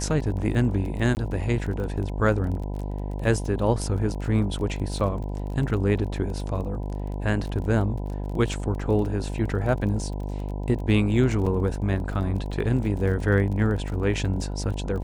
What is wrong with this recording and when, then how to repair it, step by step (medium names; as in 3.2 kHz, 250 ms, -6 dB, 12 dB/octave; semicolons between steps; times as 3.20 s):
buzz 50 Hz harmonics 20 -30 dBFS
crackle 27 per s -33 dBFS
1.15–1.17 s: dropout 19 ms
11.46–11.47 s: dropout 5.1 ms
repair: de-click; de-hum 50 Hz, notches 20; interpolate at 1.15 s, 19 ms; interpolate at 11.46 s, 5.1 ms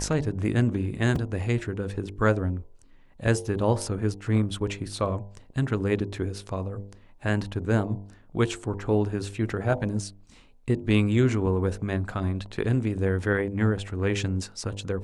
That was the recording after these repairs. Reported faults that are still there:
nothing left